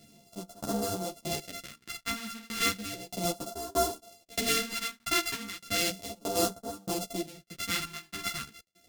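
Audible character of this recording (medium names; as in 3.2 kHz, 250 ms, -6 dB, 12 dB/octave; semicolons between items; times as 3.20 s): a buzz of ramps at a fixed pitch in blocks of 64 samples; phasing stages 2, 0.34 Hz, lowest notch 530–2100 Hz; tremolo saw down 1.6 Hz, depth 100%; a shimmering, thickened sound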